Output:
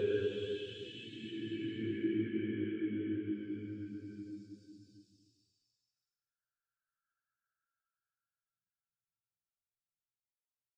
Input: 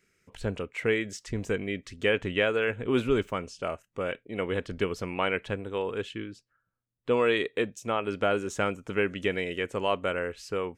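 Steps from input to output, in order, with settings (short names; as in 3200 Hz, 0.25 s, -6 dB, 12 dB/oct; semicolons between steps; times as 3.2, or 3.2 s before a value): Paulstretch 14×, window 0.25 s, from 6.03; spectral expander 1.5:1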